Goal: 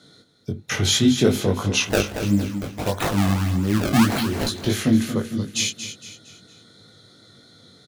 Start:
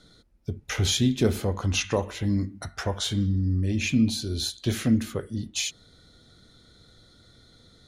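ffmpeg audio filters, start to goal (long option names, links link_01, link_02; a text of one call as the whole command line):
ffmpeg -i in.wav -filter_complex "[0:a]highpass=frequency=110:width=0.5412,highpass=frequency=110:width=1.3066,asettb=1/sr,asplit=3[link_01][link_02][link_03];[link_01]atrim=end=1.874[link_04];[link_02]atrim=start=1.87:end=4.47,asetpts=PTS-STARTPTS,afade=type=in:duration=0.004:curve=qsin,afade=type=out:start_time=2.596:duration=0.004:curve=qsin,acrusher=samples=27:mix=1:aa=0.000001:lfo=1:lforange=43.2:lforate=1.6[link_05];[link_03]atrim=start=4.466[link_06];[link_04][link_05]acrossfade=duration=0.004:curve1=hsin:curve2=qsin[link_07];[link_07][link_06]acrossfade=duration=0.004:curve1=qsin:curve2=hsin,flanger=delay=19:depth=2.7:speed=2.9,aecho=1:1:230|460|690|920:0.316|0.13|0.0532|0.0218,volume=8.5dB" out.wav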